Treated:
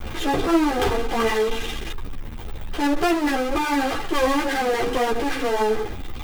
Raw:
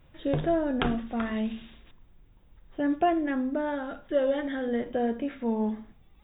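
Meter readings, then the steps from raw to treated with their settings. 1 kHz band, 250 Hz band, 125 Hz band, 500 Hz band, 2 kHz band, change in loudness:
+10.5 dB, +4.0 dB, +4.0 dB, +6.0 dB, +12.0 dB, +6.5 dB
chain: minimum comb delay 2.5 ms; power-law curve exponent 0.35; ensemble effect

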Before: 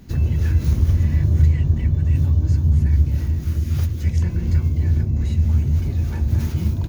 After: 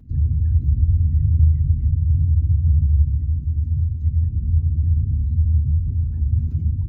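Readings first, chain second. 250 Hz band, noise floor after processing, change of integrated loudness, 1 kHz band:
-7.0 dB, -27 dBFS, -0.5 dB, n/a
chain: formant sharpening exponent 2; notch comb 180 Hz

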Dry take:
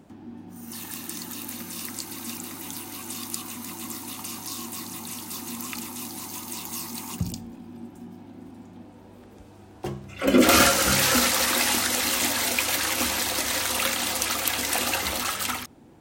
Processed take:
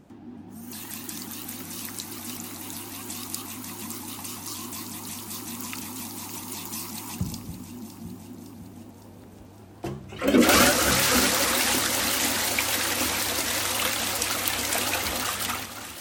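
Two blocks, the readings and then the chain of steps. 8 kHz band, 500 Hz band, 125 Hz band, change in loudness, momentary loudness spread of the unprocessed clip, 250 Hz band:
-0.5 dB, -0.5 dB, +0.5 dB, -0.5 dB, 21 LU, -0.5 dB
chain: on a send: echo with dull and thin repeats by turns 0.28 s, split 1500 Hz, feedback 76%, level -10 dB; on the sum: shaped vibrato saw up 5.5 Hz, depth 160 cents; gain -1 dB

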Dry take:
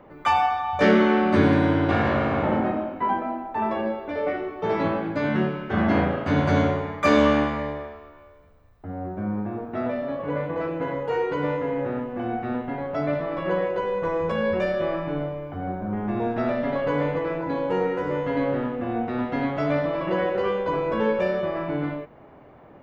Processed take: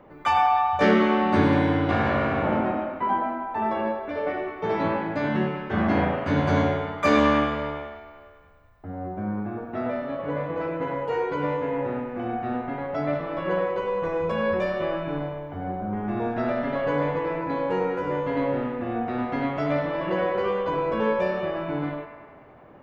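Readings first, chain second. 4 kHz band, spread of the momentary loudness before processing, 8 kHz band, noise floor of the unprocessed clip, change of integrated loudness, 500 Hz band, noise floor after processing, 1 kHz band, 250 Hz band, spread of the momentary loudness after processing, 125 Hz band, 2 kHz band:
-1.0 dB, 10 LU, n/a, -49 dBFS, -1.0 dB, -1.0 dB, -48 dBFS, +1.0 dB, -1.5 dB, 10 LU, -1.5 dB, -0.5 dB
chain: band-limited delay 0.1 s, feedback 66%, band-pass 1400 Hz, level -6 dB; gain -1.5 dB

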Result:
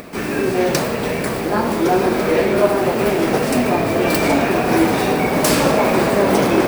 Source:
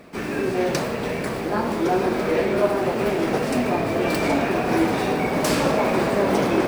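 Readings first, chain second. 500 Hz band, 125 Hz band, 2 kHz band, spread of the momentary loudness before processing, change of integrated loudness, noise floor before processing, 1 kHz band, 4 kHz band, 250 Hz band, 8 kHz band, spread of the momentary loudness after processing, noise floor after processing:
+5.0 dB, +5.0 dB, +5.5 dB, 5 LU, +5.0 dB, -28 dBFS, +5.0 dB, +6.0 dB, +5.0 dB, +8.5 dB, 5 LU, -22 dBFS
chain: high shelf 10000 Hz +10 dB; upward compressor, threshold -35 dBFS; gain +5 dB

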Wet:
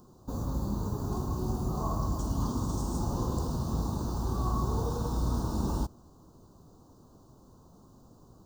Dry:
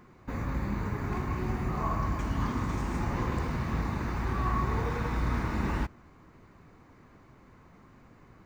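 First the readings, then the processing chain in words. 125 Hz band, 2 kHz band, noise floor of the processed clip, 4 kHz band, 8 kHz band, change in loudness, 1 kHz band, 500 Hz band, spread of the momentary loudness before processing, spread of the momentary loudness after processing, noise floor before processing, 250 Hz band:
0.0 dB, -19.0 dB, -57 dBFS, +0.5 dB, n/a, -0.5 dB, -3.5 dB, 0.0 dB, 3 LU, 3 LU, -57 dBFS, 0.0 dB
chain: Butterworth band-stop 2100 Hz, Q 0.59; high shelf 3500 Hz +10.5 dB

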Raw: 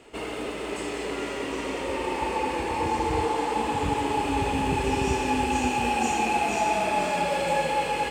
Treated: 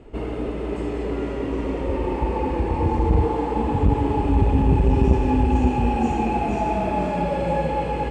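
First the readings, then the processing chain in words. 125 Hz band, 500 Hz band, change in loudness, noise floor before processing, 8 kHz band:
+13.0 dB, +3.5 dB, +4.0 dB, -33 dBFS, under -10 dB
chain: tilt -4.5 dB/oct; core saturation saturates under 170 Hz; gain -1 dB

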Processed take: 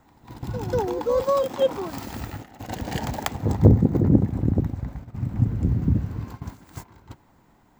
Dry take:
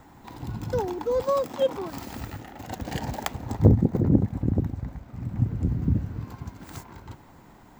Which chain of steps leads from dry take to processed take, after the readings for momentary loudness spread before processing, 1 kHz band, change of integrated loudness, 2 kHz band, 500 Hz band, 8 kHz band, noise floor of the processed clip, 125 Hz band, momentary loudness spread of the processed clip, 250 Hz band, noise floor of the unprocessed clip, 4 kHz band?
19 LU, +3.0 dB, +3.0 dB, +2.5 dB, +3.0 dB, +2.5 dB, -59 dBFS, +3.0 dB, 18 LU, +3.0 dB, -51 dBFS, +3.0 dB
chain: reverse echo 0.192 s -10.5 dB; gate -38 dBFS, range -10 dB; gain +2.5 dB

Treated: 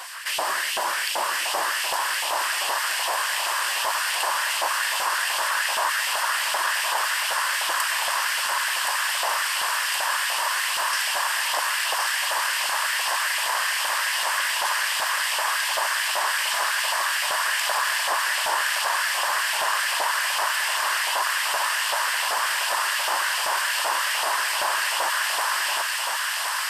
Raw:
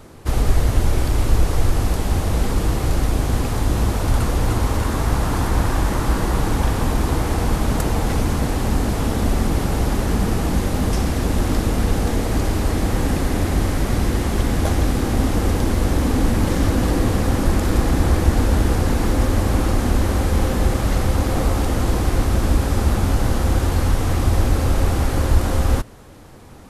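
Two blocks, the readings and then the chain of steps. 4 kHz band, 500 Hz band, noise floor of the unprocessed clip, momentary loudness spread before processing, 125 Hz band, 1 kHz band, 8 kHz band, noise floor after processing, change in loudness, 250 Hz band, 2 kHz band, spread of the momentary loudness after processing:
+9.0 dB, -10.0 dB, -23 dBFS, 2 LU, under -40 dB, +3.5 dB, +6.0 dB, -26 dBFS, -2.0 dB, under -30 dB, +9.5 dB, 1 LU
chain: spectral gate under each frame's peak -20 dB weak; ripple EQ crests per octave 1.3, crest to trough 7 dB; LFO high-pass saw up 2.6 Hz 690–3100 Hz; thinning echo 1.069 s, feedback 80%, high-pass 910 Hz, level -4.5 dB; fast leveller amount 50%

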